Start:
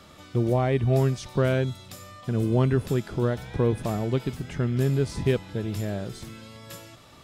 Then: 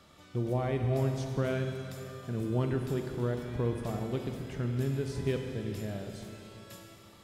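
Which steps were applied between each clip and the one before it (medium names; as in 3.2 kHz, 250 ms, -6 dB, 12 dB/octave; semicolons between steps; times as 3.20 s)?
Schroeder reverb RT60 3.1 s, combs from 33 ms, DRR 4.5 dB; trim -8.5 dB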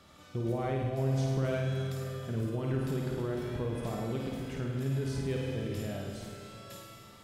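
peak limiter -26 dBFS, peak gain reduction 8 dB; on a send: flutter echo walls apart 9 m, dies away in 0.7 s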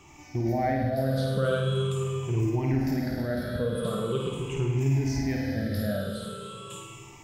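drifting ripple filter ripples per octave 0.7, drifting -0.42 Hz, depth 19 dB; trim +2.5 dB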